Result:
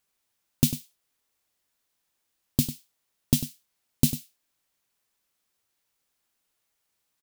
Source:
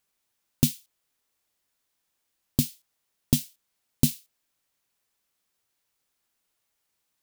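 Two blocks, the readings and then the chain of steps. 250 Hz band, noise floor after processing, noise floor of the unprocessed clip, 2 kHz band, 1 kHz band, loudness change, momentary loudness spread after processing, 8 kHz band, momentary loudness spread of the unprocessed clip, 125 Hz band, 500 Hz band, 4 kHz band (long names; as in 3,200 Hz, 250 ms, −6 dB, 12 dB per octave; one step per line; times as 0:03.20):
0.0 dB, −78 dBFS, −78 dBFS, 0.0 dB, 0.0 dB, −0.5 dB, 12 LU, 0.0 dB, 17 LU, 0.0 dB, 0.0 dB, 0.0 dB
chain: single-tap delay 98 ms −12.5 dB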